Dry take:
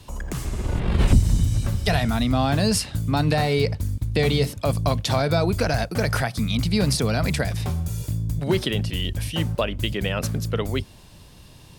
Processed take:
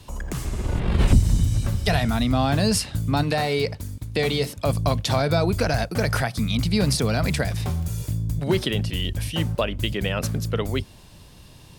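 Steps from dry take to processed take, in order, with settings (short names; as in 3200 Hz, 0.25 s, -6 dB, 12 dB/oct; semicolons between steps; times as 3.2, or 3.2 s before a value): 3.23–4.58 low shelf 160 Hz -10 dB; 6.96–8.12 crackle 240/s -36 dBFS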